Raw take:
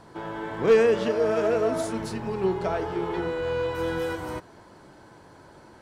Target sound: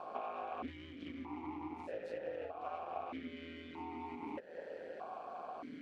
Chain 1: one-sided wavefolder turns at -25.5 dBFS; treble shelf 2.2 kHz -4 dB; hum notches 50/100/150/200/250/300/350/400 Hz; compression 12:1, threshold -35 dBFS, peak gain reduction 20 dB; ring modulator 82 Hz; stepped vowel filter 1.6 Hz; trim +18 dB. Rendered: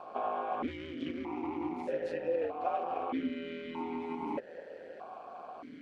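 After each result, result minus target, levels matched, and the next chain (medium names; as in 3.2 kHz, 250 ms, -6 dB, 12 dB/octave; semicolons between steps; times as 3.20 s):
compression: peak gain reduction -7 dB; one-sided wavefolder: distortion -10 dB
one-sided wavefolder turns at -25.5 dBFS; treble shelf 2.2 kHz -4 dB; hum notches 50/100/150/200/250/300/350/400 Hz; compression 12:1, threshold -42.5 dBFS, peak gain reduction 27 dB; ring modulator 82 Hz; stepped vowel filter 1.6 Hz; trim +18 dB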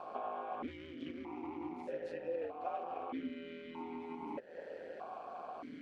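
one-sided wavefolder: distortion -10 dB
one-sided wavefolder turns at -34.5 dBFS; treble shelf 2.2 kHz -4 dB; hum notches 50/100/150/200/250/300/350/400 Hz; compression 12:1, threshold -42.5 dBFS, peak gain reduction 27 dB; ring modulator 82 Hz; stepped vowel filter 1.6 Hz; trim +18 dB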